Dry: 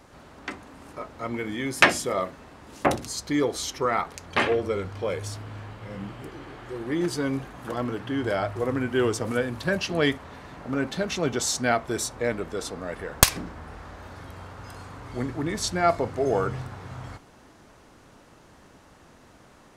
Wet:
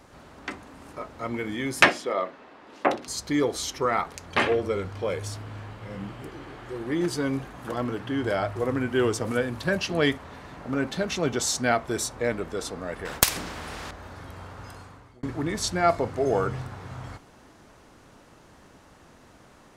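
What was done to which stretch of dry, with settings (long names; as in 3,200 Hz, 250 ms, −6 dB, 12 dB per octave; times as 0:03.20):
0:01.89–0:03.08: three-way crossover with the lows and the highs turned down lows −20 dB, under 230 Hz, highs −17 dB, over 4,600 Hz
0:13.05–0:13.91: every bin compressed towards the loudest bin 2 to 1
0:14.63–0:15.23: fade out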